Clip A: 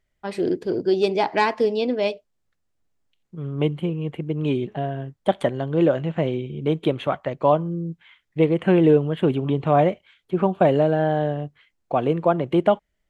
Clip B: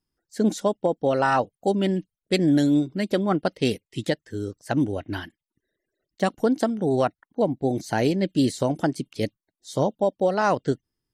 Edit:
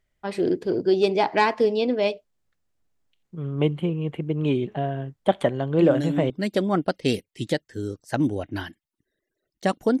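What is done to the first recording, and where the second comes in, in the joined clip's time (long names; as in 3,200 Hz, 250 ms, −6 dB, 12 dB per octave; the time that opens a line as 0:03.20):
clip A
0:05.79: mix in clip B from 0:02.36 0.51 s −7.5 dB
0:06.30: continue with clip B from 0:02.87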